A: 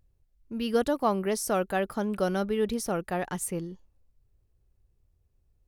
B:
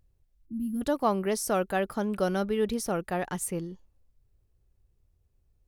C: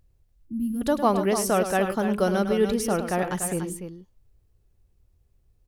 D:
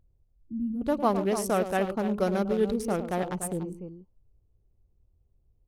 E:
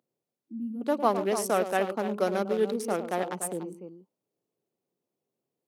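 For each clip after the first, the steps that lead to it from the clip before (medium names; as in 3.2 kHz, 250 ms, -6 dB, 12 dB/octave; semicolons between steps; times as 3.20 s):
time-frequency box 0.46–0.82 s, 330–10000 Hz -30 dB
loudspeakers at several distances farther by 36 m -10 dB, 100 m -9 dB; trim +4 dB
local Wiener filter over 25 samples; trim -3 dB
Bessel high-pass 300 Hz, order 8; trim +1.5 dB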